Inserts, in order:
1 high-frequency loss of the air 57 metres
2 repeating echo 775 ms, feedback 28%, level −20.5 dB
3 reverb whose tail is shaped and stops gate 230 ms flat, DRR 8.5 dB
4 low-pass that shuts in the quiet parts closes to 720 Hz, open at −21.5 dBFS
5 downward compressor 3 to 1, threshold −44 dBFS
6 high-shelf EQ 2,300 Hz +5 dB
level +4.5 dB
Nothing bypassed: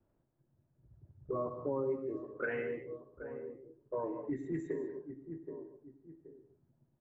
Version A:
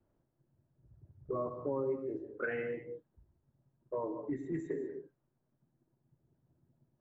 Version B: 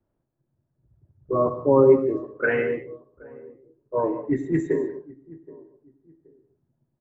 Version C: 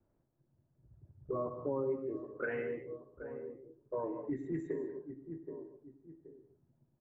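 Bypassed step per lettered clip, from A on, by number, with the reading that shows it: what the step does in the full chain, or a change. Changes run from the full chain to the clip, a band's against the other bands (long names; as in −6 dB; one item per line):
2, change in momentary loudness spread −9 LU
5, average gain reduction 10.0 dB
6, 2 kHz band −1.5 dB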